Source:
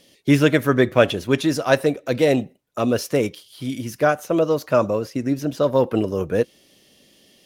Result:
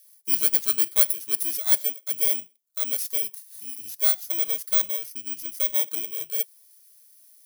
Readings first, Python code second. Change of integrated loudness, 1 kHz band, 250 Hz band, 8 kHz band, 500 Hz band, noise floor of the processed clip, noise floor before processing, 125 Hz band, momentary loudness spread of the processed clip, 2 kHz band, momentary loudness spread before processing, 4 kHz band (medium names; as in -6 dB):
-1.5 dB, -20.0 dB, -27.0 dB, +9.5 dB, -24.0 dB, -59 dBFS, -56 dBFS, under -25 dB, 12 LU, -14.0 dB, 9 LU, -2.5 dB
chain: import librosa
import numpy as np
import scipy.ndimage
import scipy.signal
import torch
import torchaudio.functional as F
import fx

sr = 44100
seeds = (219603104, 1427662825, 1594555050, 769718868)

y = fx.bit_reversed(x, sr, seeds[0], block=16)
y = F.preemphasis(torch.from_numpy(y), 0.97).numpy()
y = y * librosa.db_to_amplitude(-1.0)